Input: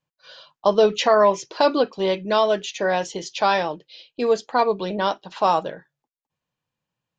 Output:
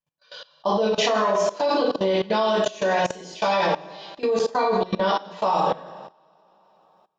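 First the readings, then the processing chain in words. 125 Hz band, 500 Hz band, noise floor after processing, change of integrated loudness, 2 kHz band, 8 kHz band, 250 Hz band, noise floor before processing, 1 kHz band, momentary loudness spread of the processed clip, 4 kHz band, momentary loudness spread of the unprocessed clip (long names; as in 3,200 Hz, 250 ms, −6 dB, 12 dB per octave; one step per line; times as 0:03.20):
+2.0 dB, −2.0 dB, −61 dBFS, −2.0 dB, −1.0 dB, can't be measured, 0.0 dB, below −85 dBFS, −1.5 dB, 9 LU, −0.5 dB, 9 LU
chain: coupled-rooms reverb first 0.76 s, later 3.2 s, from −22 dB, DRR −6.5 dB
output level in coarse steps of 19 dB
level −1.5 dB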